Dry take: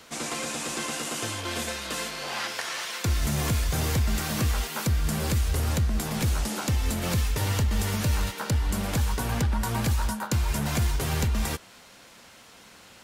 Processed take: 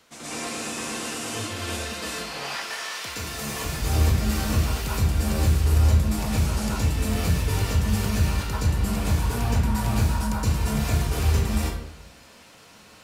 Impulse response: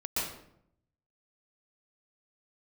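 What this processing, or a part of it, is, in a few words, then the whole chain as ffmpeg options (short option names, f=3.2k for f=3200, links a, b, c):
bathroom: -filter_complex "[0:a]asettb=1/sr,asplit=3[a][b][c];[a]atrim=end=2.344[d];[b]atrim=start=2.34:end=3.65,asetpts=PTS-STARTPTS,afade=t=in:d=0.004:c=qsin,afade=t=out:st=1.306:d=0.004:c=qsin,highpass=f=440:p=1[e];[c]atrim=start=3.646[f];[d][e]acrossfade=d=0.004:c1=hsin:c2=qsin[g];[g][f]acrossfade=d=0.004:c1=qsin:c2=hsin[h];[1:a]atrim=start_sample=2205[i];[h][i]afir=irnorm=-1:irlink=0,volume=-5dB"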